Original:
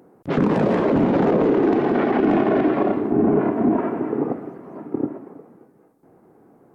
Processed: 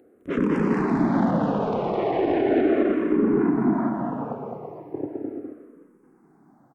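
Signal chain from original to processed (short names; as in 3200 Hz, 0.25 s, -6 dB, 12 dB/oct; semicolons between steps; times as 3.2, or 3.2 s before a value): bouncing-ball echo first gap 0.21 s, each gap 0.6×, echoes 5; endless phaser -0.37 Hz; gain -2.5 dB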